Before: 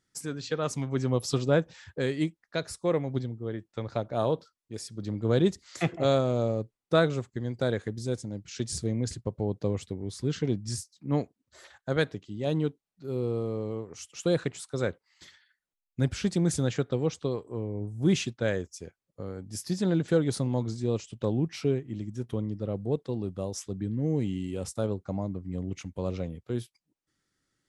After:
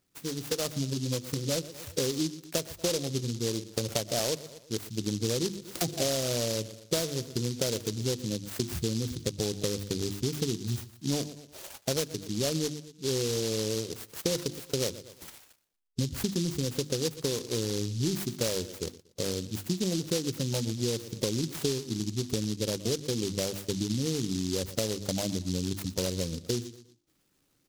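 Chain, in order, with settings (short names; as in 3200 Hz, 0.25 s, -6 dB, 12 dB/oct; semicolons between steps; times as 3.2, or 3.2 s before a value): in parallel at -4 dB: hard clip -23.5 dBFS, distortion -10 dB; on the sum: spectral gate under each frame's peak -20 dB strong; tone controls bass -4 dB, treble -13 dB; on a send: feedback echo 0.118 s, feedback 33%, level -20 dB; on the sum: dynamic EQ 4500 Hz, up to -3 dB, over -57 dBFS, Q 2; notches 50/100/150/200/250/300/350 Hz; compressor 12:1, threshold -32 dBFS, peak gain reduction 17 dB; 0.93–1.61 notch comb 410 Hz; AGC gain up to 4.5 dB; noise-modulated delay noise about 4800 Hz, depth 0.2 ms; gain +1.5 dB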